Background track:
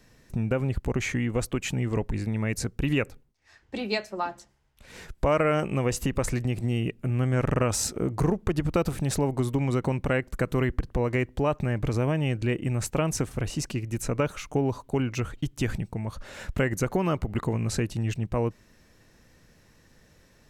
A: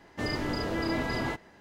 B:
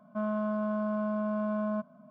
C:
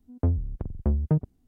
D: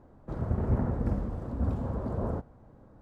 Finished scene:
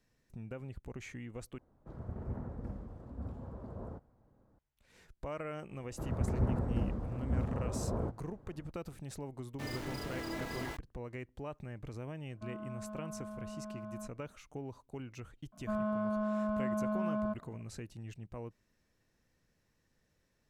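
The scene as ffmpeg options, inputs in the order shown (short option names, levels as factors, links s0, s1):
-filter_complex "[4:a]asplit=2[s0][s1];[2:a]asplit=2[s2][s3];[0:a]volume=0.126[s4];[1:a]aeval=exprs='val(0)*gte(abs(val(0)),0.0188)':c=same[s5];[s4]asplit=2[s6][s7];[s6]atrim=end=1.584[s8];[s0]atrim=end=3.01,asetpts=PTS-STARTPTS,volume=0.224[s9];[s7]atrim=start=4.586[s10];[s1]atrim=end=3.01,asetpts=PTS-STARTPTS,volume=0.631,afade=t=in:d=0.004:c=hsin,afade=t=out:st=3.006:d=0.004:c=hsin,adelay=5700[s11];[s5]atrim=end=1.6,asetpts=PTS-STARTPTS,volume=0.316,afade=t=in:d=0.004:c=hsin,afade=t=out:st=1.596:d=0.004:c=hsin,adelay=9410[s12];[s2]atrim=end=2.1,asetpts=PTS-STARTPTS,volume=0.2,afade=t=in:d=0.004:c=hsin,afade=t=out:st=2.096:d=0.004:c=hsin,adelay=12260[s13];[s3]atrim=end=2.1,asetpts=PTS-STARTPTS,volume=0.708,afade=t=in:d=0.004:c=hsin,afade=t=out:st=2.096:d=0.004:c=hsin,adelay=15520[s14];[s8][s9]acrossfade=d=0.004:c1=hsin:c2=hsin[s15];[s15][s10]acrossfade=d=0.004:c1=hsin:c2=hsin[s16];[s16][s11][s12][s13][s14]amix=inputs=5:normalize=0"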